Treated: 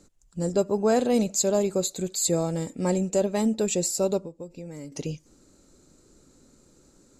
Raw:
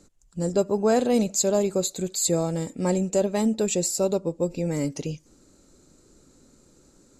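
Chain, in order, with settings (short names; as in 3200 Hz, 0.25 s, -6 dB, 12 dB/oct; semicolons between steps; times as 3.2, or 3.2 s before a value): 4.21–4.92 compressor 4:1, threshold -37 dBFS, peak gain reduction 14.5 dB; gain -1 dB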